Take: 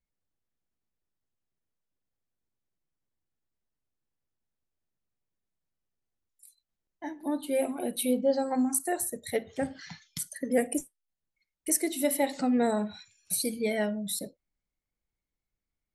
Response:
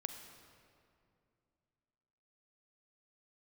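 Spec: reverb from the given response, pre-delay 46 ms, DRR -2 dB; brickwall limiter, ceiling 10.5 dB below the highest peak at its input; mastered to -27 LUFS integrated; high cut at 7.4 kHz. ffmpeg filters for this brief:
-filter_complex "[0:a]lowpass=7400,alimiter=limit=0.0631:level=0:latency=1,asplit=2[s0][s1];[1:a]atrim=start_sample=2205,adelay=46[s2];[s1][s2]afir=irnorm=-1:irlink=0,volume=1.5[s3];[s0][s3]amix=inputs=2:normalize=0,volume=1.58"

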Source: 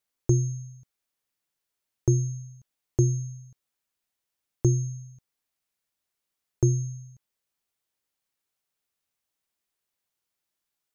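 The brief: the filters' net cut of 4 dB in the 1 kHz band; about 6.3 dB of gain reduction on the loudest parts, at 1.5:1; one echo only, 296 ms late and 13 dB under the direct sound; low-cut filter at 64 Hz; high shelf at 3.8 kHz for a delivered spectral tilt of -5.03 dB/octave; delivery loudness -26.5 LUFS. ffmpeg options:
-af "highpass=64,equalizer=f=1000:t=o:g=-6,highshelf=f=3800:g=4.5,acompressor=threshold=0.02:ratio=1.5,aecho=1:1:296:0.224,volume=2.37"

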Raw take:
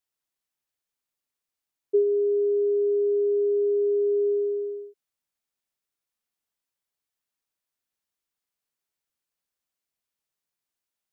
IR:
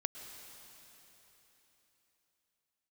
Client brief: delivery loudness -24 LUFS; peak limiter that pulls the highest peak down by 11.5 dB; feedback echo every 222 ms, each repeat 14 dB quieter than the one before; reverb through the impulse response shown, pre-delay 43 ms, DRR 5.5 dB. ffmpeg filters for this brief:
-filter_complex "[0:a]alimiter=level_in=1.19:limit=0.0631:level=0:latency=1,volume=0.841,aecho=1:1:222|444:0.2|0.0399,asplit=2[s0][s1];[1:a]atrim=start_sample=2205,adelay=43[s2];[s1][s2]afir=irnorm=-1:irlink=0,volume=0.531[s3];[s0][s3]amix=inputs=2:normalize=0,volume=3.98"

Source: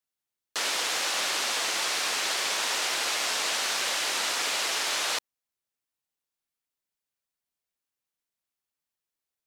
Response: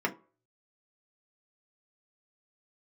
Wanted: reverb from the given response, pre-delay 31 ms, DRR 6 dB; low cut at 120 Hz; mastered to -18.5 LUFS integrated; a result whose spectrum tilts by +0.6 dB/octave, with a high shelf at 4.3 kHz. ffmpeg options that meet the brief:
-filter_complex "[0:a]highpass=120,highshelf=f=4300:g=4.5,asplit=2[s0][s1];[1:a]atrim=start_sample=2205,adelay=31[s2];[s1][s2]afir=irnorm=-1:irlink=0,volume=0.188[s3];[s0][s3]amix=inputs=2:normalize=0,volume=1.88"

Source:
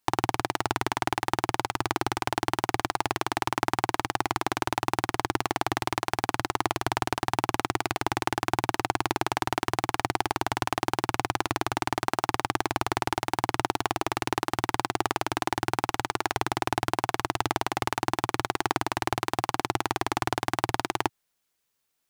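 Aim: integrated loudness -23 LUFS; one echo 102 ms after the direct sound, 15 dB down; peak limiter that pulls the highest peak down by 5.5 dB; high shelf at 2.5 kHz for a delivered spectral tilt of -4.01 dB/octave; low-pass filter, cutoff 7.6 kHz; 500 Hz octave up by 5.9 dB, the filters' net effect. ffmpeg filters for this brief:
-af "lowpass=7600,equalizer=f=500:t=o:g=9,highshelf=f=2500:g=-5.5,alimiter=limit=0.335:level=0:latency=1,aecho=1:1:102:0.178,volume=2.11"

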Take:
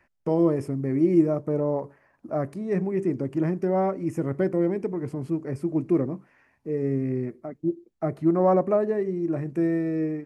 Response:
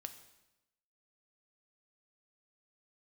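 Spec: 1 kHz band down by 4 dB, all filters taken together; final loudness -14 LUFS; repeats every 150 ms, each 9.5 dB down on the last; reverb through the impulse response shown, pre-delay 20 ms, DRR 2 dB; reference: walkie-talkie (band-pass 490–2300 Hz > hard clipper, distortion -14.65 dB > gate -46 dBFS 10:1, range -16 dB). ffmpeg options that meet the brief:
-filter_complex "[0:a]equalizer=f=1000:t=o:g=-5,aecho=1:1:150|300|450|600:0.335|0.111|0.0365|0.012,asplit=2[s0][s1];[1:a]atrim=start_sample=2205,adelay=20[s2];[s1][s2]afir=irnorm=-1:irlink=0,volume=1.26[s3];[s0][s3]amix=inputs=2:normalize=0,highpass=490,lowpass=2300,asoftclip=type=hard:threshold=0.0841,agate=range=0.158:threshold=0.00501:ratio=10,volume=7.08"

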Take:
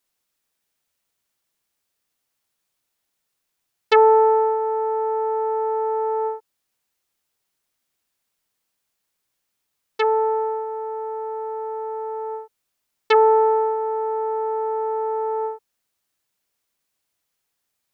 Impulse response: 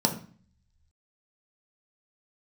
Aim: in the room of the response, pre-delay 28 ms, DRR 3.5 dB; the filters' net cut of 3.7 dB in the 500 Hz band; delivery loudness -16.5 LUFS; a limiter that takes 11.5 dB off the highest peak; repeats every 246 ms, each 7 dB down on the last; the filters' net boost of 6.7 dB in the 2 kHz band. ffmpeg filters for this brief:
-filter_complex "[0:a]equalizer=f=500:t=o:g=-4.5,equalizer=f=2000:t=o:g=8,alimiter=limit=0.266:level=0:latency=1,aecho=1:1:246|492|738|984|1230:0.447|0.201|0.0905|0.0407|0.0183,asplit=2[s0][s1];[1:a]atrim=start_sample=2205,adelay=28[s2];[s1][s2]afir=irnorm=-1:irlink=0,volume=0.188[s3];[s0][s3]amix=inputs=2:normalize=0,volume=2.82"

